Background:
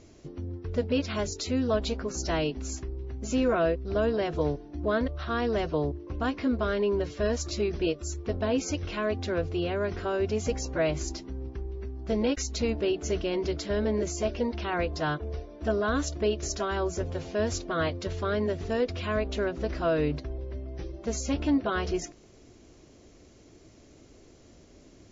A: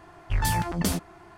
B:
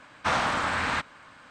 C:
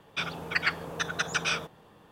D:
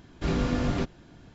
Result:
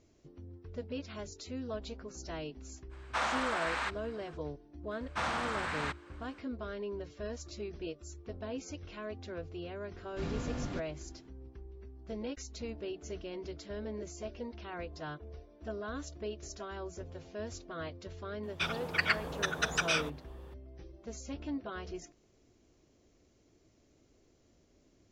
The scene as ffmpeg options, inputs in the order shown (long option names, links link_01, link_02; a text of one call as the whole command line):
ffmpeg -i bed.wav -i cue0.wav -i cue1.wav -i cue2.wav -i cue3.wav -filter_complex "[2:a]asplit=2[link_01][link_02];[0:a]volume=-13dB[link_03];[link_01]highpass=400,atrim=end=1.5,asetpts=PTS-STARTPTS,volume=-7dB,afade=type=in:duration=0.05,afade=type=out:start_time=1.45:duration=0.05,adelay=2890[link_04];[link_02]atrim=end=1.5,asetpts=PTS-STARTPTS,volume=-9dB,afade=type=in:duration=0.004:curve=hsin,afade=type=out:start_time=1.496:duration=0.004:curve=hsin,adelay=4910[link_05];[4:a]atrim=end=1.34,asetpts=PTS-STARTPTS,volume=-11dB,afade=type=in:duration=0.004:curve=hsin,afade=type=out:start_time=1.336:duration=0.004:curve=hsin,adelay=9950[link_06];[3:a]atrim=end=2.11,asetpts=PTS-STARTPTS,volume=-2dB,afade=type=in:duration=0.004:curve=hsin,afade=type=out:start_time=2.106:duration=0.004:curve=hsin,adelay=18430[link_07];[link_03][link_04][link_05][link_06][link_07]amix=inputs=5:normalize=0" out.wav